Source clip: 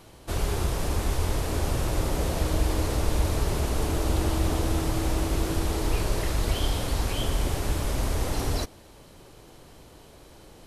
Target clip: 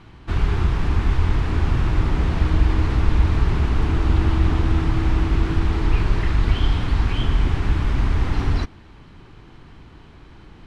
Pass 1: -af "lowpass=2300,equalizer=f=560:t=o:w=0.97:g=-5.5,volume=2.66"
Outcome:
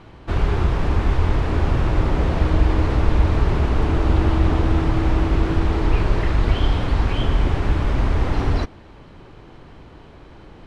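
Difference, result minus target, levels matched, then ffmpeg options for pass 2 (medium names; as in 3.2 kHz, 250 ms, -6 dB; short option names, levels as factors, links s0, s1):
500 Hz band +5.0 dB
-af "lowpass=2300,equalizer=f=560:t=o:w=0.97:g=-15.5,volume=2.66"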